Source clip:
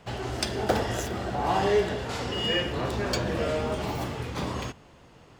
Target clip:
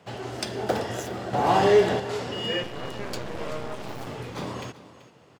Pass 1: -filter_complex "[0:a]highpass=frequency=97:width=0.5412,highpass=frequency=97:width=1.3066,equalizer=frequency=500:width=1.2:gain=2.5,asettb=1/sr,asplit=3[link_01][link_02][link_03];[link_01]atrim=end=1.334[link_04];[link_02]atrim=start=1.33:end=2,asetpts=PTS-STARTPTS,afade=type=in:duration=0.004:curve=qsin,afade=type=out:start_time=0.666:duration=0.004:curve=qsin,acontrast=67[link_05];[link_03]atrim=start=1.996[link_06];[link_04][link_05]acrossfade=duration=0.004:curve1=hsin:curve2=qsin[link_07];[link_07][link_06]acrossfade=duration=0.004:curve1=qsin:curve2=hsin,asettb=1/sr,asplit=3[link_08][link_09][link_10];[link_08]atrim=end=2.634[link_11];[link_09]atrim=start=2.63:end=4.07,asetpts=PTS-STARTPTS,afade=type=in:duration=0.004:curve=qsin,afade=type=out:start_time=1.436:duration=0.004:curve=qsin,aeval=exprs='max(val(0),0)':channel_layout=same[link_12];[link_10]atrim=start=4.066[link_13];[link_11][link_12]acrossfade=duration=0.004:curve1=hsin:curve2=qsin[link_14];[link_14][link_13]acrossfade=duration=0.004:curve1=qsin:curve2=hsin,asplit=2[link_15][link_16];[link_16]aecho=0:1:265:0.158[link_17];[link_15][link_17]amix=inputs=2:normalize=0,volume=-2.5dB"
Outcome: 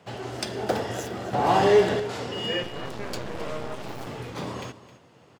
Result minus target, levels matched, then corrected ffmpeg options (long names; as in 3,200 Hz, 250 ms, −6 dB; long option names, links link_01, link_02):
echo 119 ms early
-filter_complex "[0:a]highpass=frequency=97:width=0.5412,highpass=frequency=97:width=1.3066,equalizer=frequency=500:width=1.2:gain=2.5,asettb=1/sr,asplit=3[link_01][link_02][link_03];[link_01]atrim=end=1.334[link_04];[link_02]atrim=start=1.33:end=2,asetpts=PTS-STARTPTS,afade=type=in:duration=0.004:curve=qsin,afade=type=out:start_time=0.666:duration=0.004:curve=qsin,acontrast=67[link_05];[link_03]atrim=start=1.996[link_06];[link_04][link_05]acrossfade=duration=0.004:curve1=hsin:curve2=qsin[link_07];[link_07][link_06]acrossfade=duration=0.004:curve1=qsin:curve2=hsin,asettb=1/sr,asplit=3[link_08][link_09][link_10];[link_08]atrim=end=2.634[link_11];[link_09]atrim=start=2.63:end=4.07,asetpts=PTS-STARTPTS,afade=type=in:duration=0.004:curve=qsin,afade=type=out:start_time=1.436:duration=0.004:curve=qsin,aeval=exprs='max(val(0),0)':channel_layout=same[link_12];[link_10]atrim=start=4.066[link_13];[link_11][link_12]acrossfade=duration=0.004:curve1=hsin:curve2=qsin[link_14];[link_14][link_13]acrossfade=duration=0.004:curve1=qsin:curve2=hsin,asplit=2[link_15][link_16];[link_16]aecho=0:1:384:0.158[link_17];[link_15][link_17]amix=inputs=2:normalize=0,volume=-2.5dB"